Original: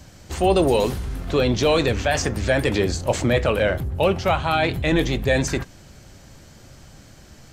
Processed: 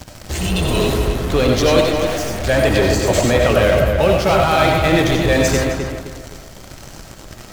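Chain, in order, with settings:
0:00.34–0:00.82: healed spectral selection 250–1,500 Hz both
in parallel at −12 dB: fuzz pedal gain 45 dB, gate −40 dBFS
on the sum: bit reduction 9 bits
0:01.81–0:02.44: gain into a clipping stage and back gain 27 dB
feedback echo with a low-pass in the loop 260 ms, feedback 34%, low-pass 2,800 Hz, level −5 dB
convolution reverb RT60 0.35 s, pre-delay 50 ms, DRR 1.5 dB

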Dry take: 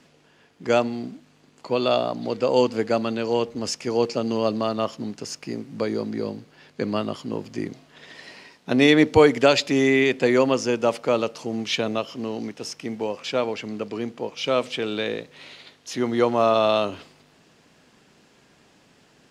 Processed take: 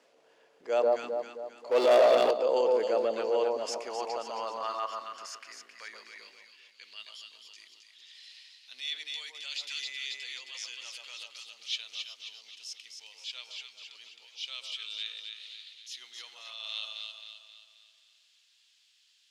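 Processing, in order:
on a send: delay that swaps between a low-pass and a high-pass 133 ms, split 1,100 Hz, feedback 67%, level −2.5 dB
on the sum: brickwall limiter −12 dBFS, peak gain reduction 9 dB
0:01.71–0:02.31: leveller curve on the samples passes 3
high-pass filter sweep 520 Hz → 3,500 Hz, 0:03.35–0:07.21
transient designer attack −6 dB, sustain −1 dB
level −8.5 dB

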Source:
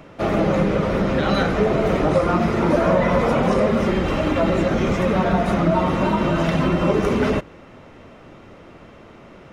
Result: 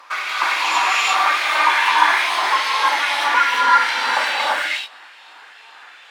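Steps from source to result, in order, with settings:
gliding playback speed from 186% → 126%
auto-filter high-pass saw up 2.4 Hz 970–4,000 Hz
reverb whose tail is shaped and stops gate 370 ms rising, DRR −5.5 dB
level −2.5 dB

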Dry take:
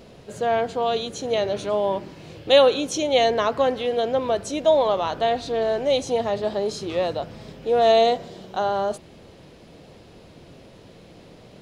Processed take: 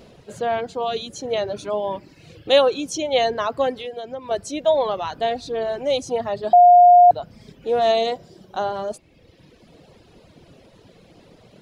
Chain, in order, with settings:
reverb reduction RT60 1.2 s
0:03.76–0:04.31: downward compressor 6 to 1, threshold −29 dBFS, peak gain reduction 10.5 dB
0:06.53–0:07.11: beep over 710 Hz −6.5 dBFS

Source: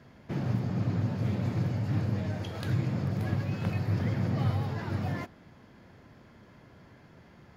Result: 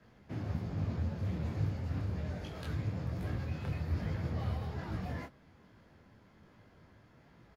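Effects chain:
frequency shifter −20 Hz
pitch-shifted copies added −4 semitones −9 dB
micro pitch shift up and down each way 42 cents
level −3 dB

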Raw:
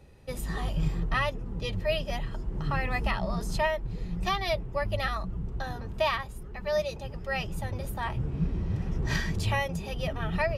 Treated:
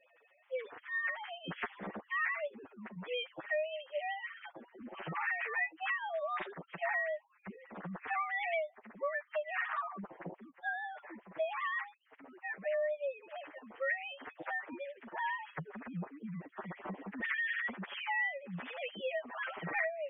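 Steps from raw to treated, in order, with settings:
three sine waves on the formant tracks
phase-vocoder stretch with locked phases 1.9×
parametric band 1,900 Hz +7 dB 0.6 octaves
downward compressor 8 to 1, threshold −32 dBFS, peak gain reduction 19 dB
low-shelf EQ 200 Hz −10 dB

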